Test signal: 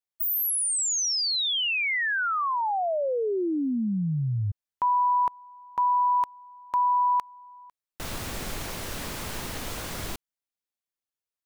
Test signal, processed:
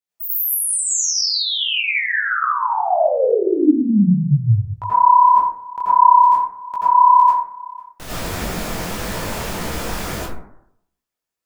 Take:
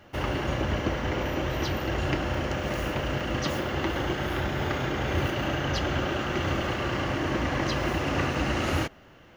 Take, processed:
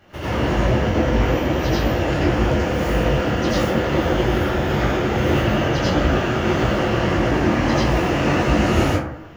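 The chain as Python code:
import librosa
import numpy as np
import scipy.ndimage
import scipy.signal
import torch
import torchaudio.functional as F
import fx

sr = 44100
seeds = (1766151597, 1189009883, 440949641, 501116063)

y = fx.dynamic_eq(x, sr, hz=1300.0, q=0.91, threshold_db=-38.0, ratio=8.0, max_db=-4)
y = fx.rev_plate(y, sr, seeds[0], rt60_s=0.72, hf_ratio=0.35, predelay_ms=75, drr_db=-9.0)
y = fx.detune_double(y, sr, cents=57)
y = y * 10.0 ** (4.0 / 20.0)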